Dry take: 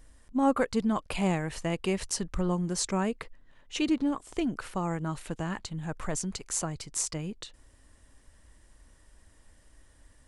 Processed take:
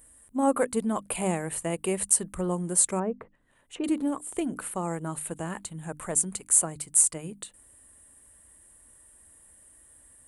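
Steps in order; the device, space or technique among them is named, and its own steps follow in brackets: budget condenser microphone (high-pass 100 Hz 6 dB/octave; resonant high shelf 7.1 kHz +11 dB, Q 3); hum notches 50/100/150/200/250/300 Hz; 2.99–3.84 s: low-pass that closes with the level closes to 1.1 kHz, closed at -31.5 dBFS; dynamic bell 510 Hz, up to +4 dB, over -40 dBFS, Q 0.96; trim -1 dB

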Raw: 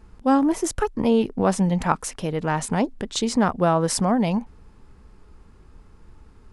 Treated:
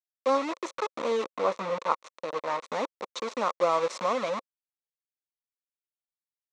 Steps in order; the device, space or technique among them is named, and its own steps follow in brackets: hand-held game console (bit crusher 4-bit; cabinet simulation 500–5500 Hz, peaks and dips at 530 Hz +9 dB, 760 Hz -6 dB, 1.1 kHz +9 dB, 1.6 kHz -9 dB, 3 kHz -8 dB, 4.9 kHz -9 dB); 1.27–2.65 s: treble shelf 5.9 kHz -7.5 dB; trim -6 dB

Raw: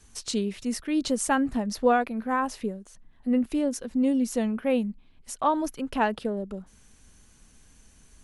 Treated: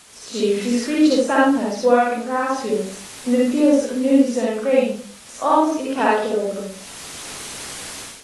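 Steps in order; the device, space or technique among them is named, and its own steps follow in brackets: hum notches 50/100/150/200 Hz; de-esser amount 70%; high-pass 67 Hz 12 dB/octave; filmed off a television (band-pass 210–8000 Hz; peaking EQ 540 Hz +7 dB 0.46 oct; reverberation RT60 0.45 s, pre-delay 48 ms, DRR -5.5 dB; white noise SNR 21 dB; level rider gain up to 14 dB; trim -3 dB; AAC 32 kbps 24 kHz)

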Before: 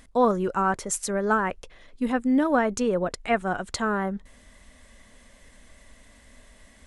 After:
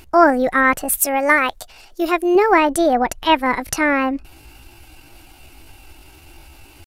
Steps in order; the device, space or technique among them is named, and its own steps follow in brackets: 1.00–2.36 s: tone controls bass -7 dB, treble +8 dB; chipmunk voice (pitch shift +5.5 st); trim +8.5 dB

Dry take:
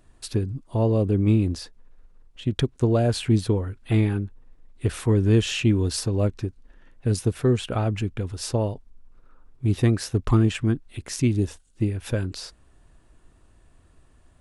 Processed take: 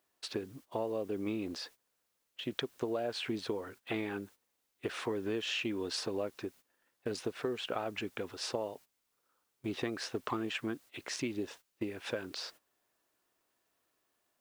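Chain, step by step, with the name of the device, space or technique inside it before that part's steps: baby monitor (band-pass 430–4300 Hz; compression, threshold -32 dBFS, peak gain reduction 11 dB; white noise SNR 27 dB; gate -53 dBFS, range -15 dB)

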